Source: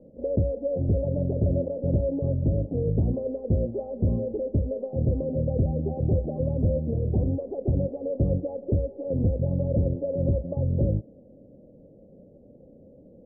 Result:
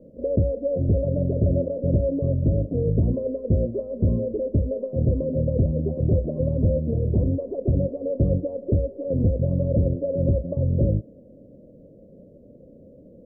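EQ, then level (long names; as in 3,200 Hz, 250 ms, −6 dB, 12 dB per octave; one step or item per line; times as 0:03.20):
Butterworth band-reject 800 Hz, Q 4.3
+3.0 dB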